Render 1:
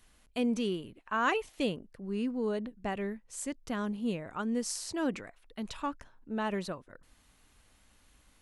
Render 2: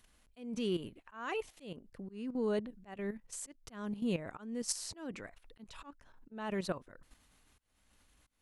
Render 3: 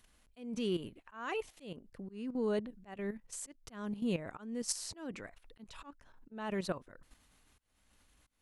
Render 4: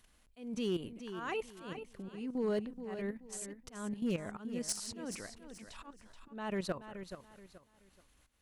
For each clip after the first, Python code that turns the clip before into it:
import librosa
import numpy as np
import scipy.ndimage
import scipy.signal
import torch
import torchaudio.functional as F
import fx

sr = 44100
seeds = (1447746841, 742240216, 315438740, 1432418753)

y1 = fx.level_steps(x, sr, step_db=12)
y1 = fx.auto_swell(y1, sr, attack_ms=373.0)
y1 = y1 * librosa.db_to_amplitude(4.5)
y2 = y1
y3 = np.clip(y2, -10.0 ** (-27.0 / 20.0), 10.0 ** (-27.0 / 20.0))
y3 = fx.echo_feedback(y3, sr, ms=428, feedback_pct=29, wet_db=-10)